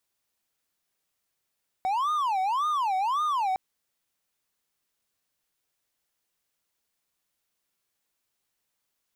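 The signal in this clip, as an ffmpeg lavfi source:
ffmpeg -f lavfi -i "aevalsrc='0.0841*(1-4*abs(mod((989.5*t-240.5/(2*PI*1.8)*sin(2*PI*1.8*t))+0.25,1)-0.5))':duration=1.71:sample_rate=44100" out.wav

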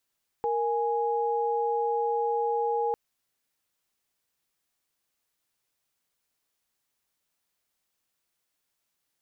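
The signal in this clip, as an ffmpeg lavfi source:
ffmpeg -f lavfi -i "aevalsrc='0.0447*(sin(2*PI*466.16*t)+sin(2*PI*830.61*t))':duration=2.5:sample_rate=44100" out.wav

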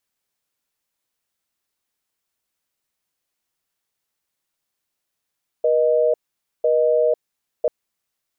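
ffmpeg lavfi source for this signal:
ffmpeg -f lavfi -i "aevalsrc='0.141*(sin(2*PI*480*t)+sin(2*PI*620*t))*clip(min(mod(t,1),0.5-mod(t,1))/0.005,0,1)':duration=2.04:sample_rate=44100" out.wav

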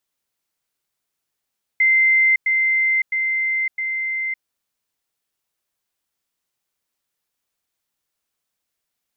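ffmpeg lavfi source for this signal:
ffmpeg -f lavfi -i "aevalsrc='pow(10,(-12-3*floor(t/0.66))/20)*sin(2*PI*2080*t)*clip(min(mod(t,0.66),0.56-mod(t,0.66))/0.005,0,1)':duration=2.64:sample_rate=44100" out.wav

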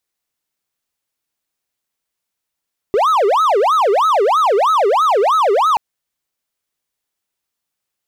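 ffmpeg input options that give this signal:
ffmpeg -f lavfi -i "aevalsrc='0.376*(1-4*abs(mod((844.5*t-455.5/(2*PI*3.1)*sin(2*PI*3.1*t))+0.25,1)-0.5))':duration=2.83:sample_rate=44100" out.wav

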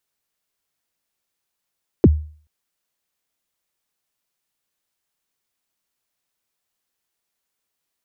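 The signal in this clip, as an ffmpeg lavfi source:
ffmpeg -f lavfi -i "aevalsrc='0.631*pow(10,-3*t/0.44)*sin(2*PI*(460*0.038/log(76/460)*(exp(log(76/460)*min(t,0.038)/0.038)-1)+76*max(t-0.038,0)))':duration=0.43:sample_rate=44100" out.wav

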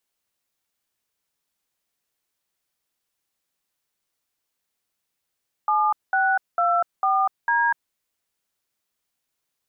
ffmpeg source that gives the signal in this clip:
ffmpeg -f lavfi -i "aevalsrc='0.1*clip(min(mod(t,0.45),0.246-mod(t,0.45))/0.002,0,1)*(eq(floor(t/0.45),0)*(sin(2*PI*852*mod(t,0.45))+sin(2*PI*1209*mod(t,0.45)))+eq(floor(t/0.45),1)*(sin(2*PI*770*mod(t,0.45))+sin(2*PI*1477*mod(t,0.45)))+eq(floor(t/0.45),2)*(sin(2*PI*697*mod(t,0.45))+sin(2*PI*1336*mod(t,0.45)))+eq(floor(t/0.45),3)*(sin(2*PI*770*mod(t,0.45))+sin(2*PI*1209*mod(t,0.45)))+eq(floor(t/0.45),4)*(sin(2*PI*941*mod(t,0.45))+sin(2*PI*1633*mod(t,0.45))))':duration=2.25:sample_rate=44100" out.wav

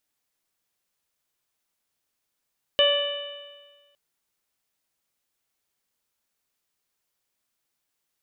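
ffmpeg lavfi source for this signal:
ffmpeg -f lavfi -i "aevalsrc='0.126*pow(10,-3*t/1.46)*sin(2*PI*573.86*t)+0.0299*pow(10,-3*t/1.46)*sin(2*PI*1152.86*t)+0.0355*pow(10,-3*t/1.46)*sin(2*PI*1742.05*t)+0.0224*pow(10,-3*t/1.46)*sin(2*PI*2346.36*t)+0.141*pow(10,-3*t/1.46)*sin(2*PI*2970.5*t)+0.0266*pow(10,-3*t/1.46)*sin(2*PI*3618.89*t)':duration=1.16:sample_rate=44100" out.wav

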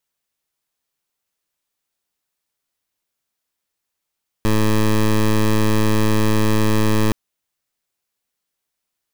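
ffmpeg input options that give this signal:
ffmpeg -f lavfi -i "aevalsrc='0.178*(2*lt(mod(108*t,1),0.15)-1)':duration=2.67:sample_rate=44100" out.wav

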